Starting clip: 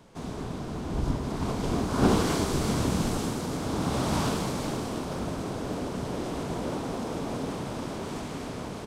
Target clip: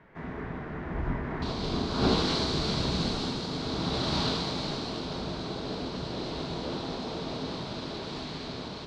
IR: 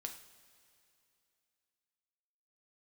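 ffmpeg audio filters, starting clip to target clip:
-filter_complex "[0:a]asetnsamples=nb_out_samples=441:pad=0,asendcmd='1.42 lowpass f 4200',lowpass=frequency=1900:width_type=q:width=4.6[link_01];[1:a]atrim=start_sample=2205[link_02];[link_01][link_02]afir=irnorm=-1:irlink=0"

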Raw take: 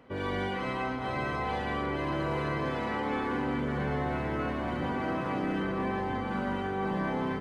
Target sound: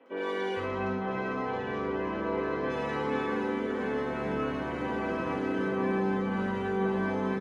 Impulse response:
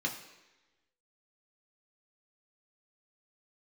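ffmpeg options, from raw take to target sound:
-filter_complex "[0:a]asettb=1/sr,asplit=3[link_01][link_02][link_03];[link_01]atrim=end=0.594[link_04];[link_02]atrim=start=0.59:end=2.64,asetpts=PTS-STARTPTS,afade=type=in:duration=0.004:curve=qsin,afade=type=out:start_time=2.046:duration=0.004:curve=qsin,adynamicsmooth=sensitivity=2:basefreq=2500[link_05];[link_03]atrim=start=2.636[link_06];[link_04][link_05]acrossfade=duration=0.004:curve1=hsin:curve2=qsin[link_07];[link_07][link_06]acrossfade=duration=0.004:curve1=qsin:curve2=hsin,acrossover=split=250|3400[link_08][link_09][link_10];[link_10]adelay=60[link_11];[link_08]adelay=460[link_12];[link_12][link_09][link_11]amix=inputs=3:normalize=0[link_13];[1:a]atrim=start_sample=2205,asetrate=70560,aresample=44100[link_14];[link_13][link_14]afir=irnorm=-1:irlink=0"

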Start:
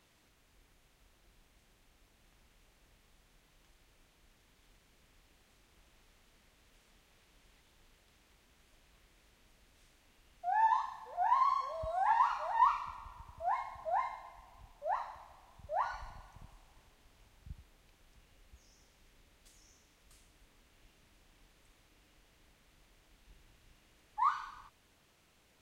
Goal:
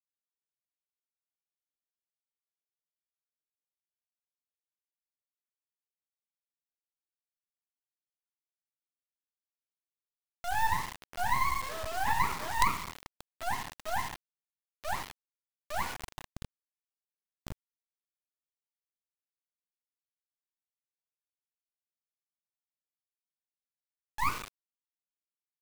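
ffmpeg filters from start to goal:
ffmpeg -i in.wav -filter_complex "[0:a]asettb=1/sr,asplit=3[link_01][link_02][link_03];[link_01]atrim=end=16.174[link_04];[link_02]atrim=start=16.17:end=17.49,asetpts=PTS-STARTPTS,afade=type=in:duration=0.004:curve=qsin,afade=type=out:start_time=1.316:duration=0.004:curve=qsin,acontrast=46[link_05];[link_03]atrim=start=17.486[link_06];[link_04][link_05]acrossfade=duration=0.004:curve1=hsin:curve2=qsin[link_07];[link_07][link_06]acrossfade=duration=0.004:curve1=qsin:curve2=hsin,acrusher=bits=4:dc=4:mix=0:aa=0.000001,volume=4.5dB" out.wav

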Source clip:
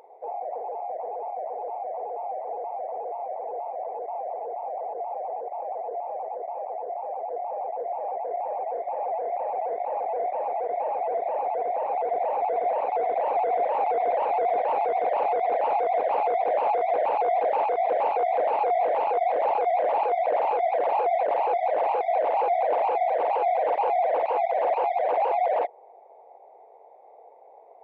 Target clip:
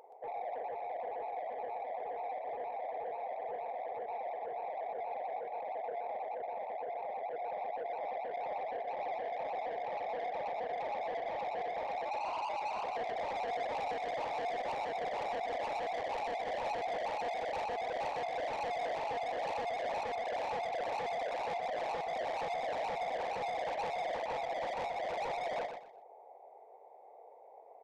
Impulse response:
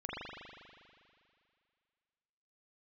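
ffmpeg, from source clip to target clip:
-filter_complex "[0:a]asplit=3[link_01][link_02][link_03];[link_01]afade=type=out:start_time=12.04:duration=0.02[link_04];[link_02]afreqshift=130,afade=type=in:start_time=12.04:duration=0.02,afade=type=out:start_time=12.83:duration=0.02[link_05];[link_03]afade=type=in:start_time=12.83:duration=0.02[link_06];[link_04][link_05][link_06]amix=inputs=3:normalize=0,asoftclip=type=tanh:threshold=-30dB,aecho=1:1:123|246|369:0.447|0.112|0.0279,volume=-5.5dB"

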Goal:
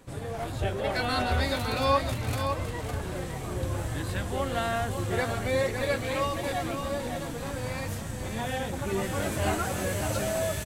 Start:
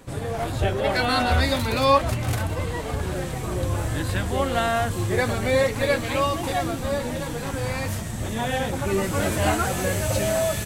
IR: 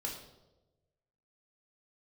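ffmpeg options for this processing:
-af "aecho=1:1:558:0.447,volume=-6.5dB"

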